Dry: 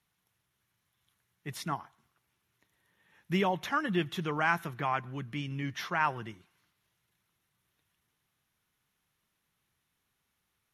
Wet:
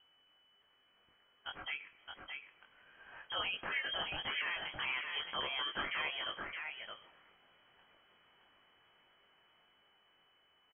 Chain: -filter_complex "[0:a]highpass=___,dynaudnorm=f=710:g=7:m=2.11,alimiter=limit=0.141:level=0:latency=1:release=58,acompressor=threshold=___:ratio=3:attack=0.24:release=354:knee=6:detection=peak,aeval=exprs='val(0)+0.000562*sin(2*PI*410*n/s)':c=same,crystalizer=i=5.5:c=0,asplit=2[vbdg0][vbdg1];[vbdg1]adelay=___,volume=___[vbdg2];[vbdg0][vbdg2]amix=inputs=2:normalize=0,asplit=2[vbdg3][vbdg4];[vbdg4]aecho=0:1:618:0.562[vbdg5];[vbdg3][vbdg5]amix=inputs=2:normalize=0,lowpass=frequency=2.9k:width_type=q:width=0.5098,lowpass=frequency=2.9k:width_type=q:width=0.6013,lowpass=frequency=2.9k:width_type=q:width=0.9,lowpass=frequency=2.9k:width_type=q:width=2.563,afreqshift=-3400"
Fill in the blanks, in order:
230, 0.00891, 21, 0.708